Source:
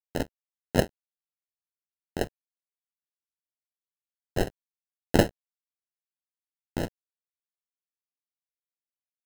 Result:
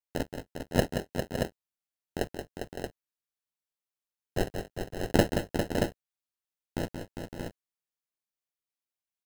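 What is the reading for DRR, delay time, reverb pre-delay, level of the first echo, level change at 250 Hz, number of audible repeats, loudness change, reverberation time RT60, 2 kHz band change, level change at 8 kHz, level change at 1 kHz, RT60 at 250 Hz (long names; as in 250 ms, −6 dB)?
no reverb audible, 177 ms, no reverb audible, −7.5 dB, 0.0 dB, 4, −3.0 dB, no reverb audible, 0.0 dB, 0.0 dB, 0.0 dB, no reverb audible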